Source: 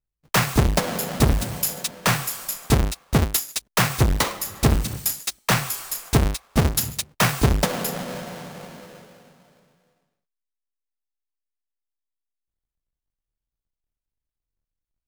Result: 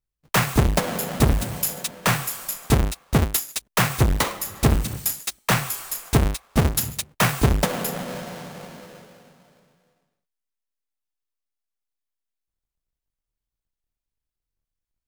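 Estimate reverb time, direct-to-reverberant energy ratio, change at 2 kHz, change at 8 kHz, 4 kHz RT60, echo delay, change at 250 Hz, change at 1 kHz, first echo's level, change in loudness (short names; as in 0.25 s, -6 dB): none, none, 0.0 dB, -1.0 dB, none, none, 0.0 dB, 0.0 dB, none, -0.5 dB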